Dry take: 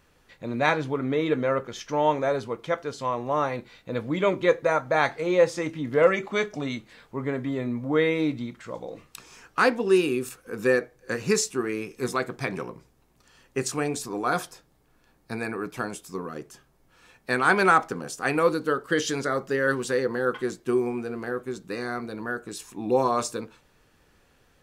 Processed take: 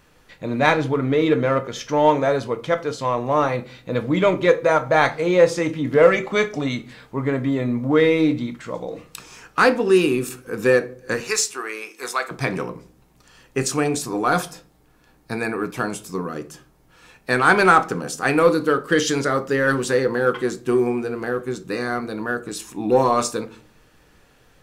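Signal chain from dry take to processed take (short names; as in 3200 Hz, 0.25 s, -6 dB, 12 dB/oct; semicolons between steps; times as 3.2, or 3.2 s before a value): 11.2–12.31 HPF 750 Hz 12 dB/oct; in parallel at -11.5 dB: hard clip -23.5 dBFS, distortion -7 dB; on the sum: reverb RT60 0.45 s, pre-delay 6 ms, DRR 11.5 dB; gain +4 dB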